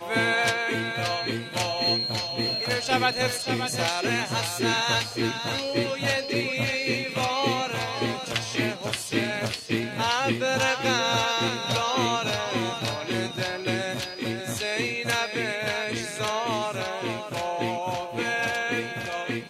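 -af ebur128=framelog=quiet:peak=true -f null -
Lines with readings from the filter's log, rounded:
Integrated loudness:
  I:         -26.0 LUFS
  Threshold: -36.0 LUFS
Loudness range:
  LRA:         3.3 LU
  Threshold: -45.9 LUFS
  LRA low:   -27.8 LUFS
  LRA high:  -24.5 LUFS
True peak:
  Peak:       -8.0 dBFS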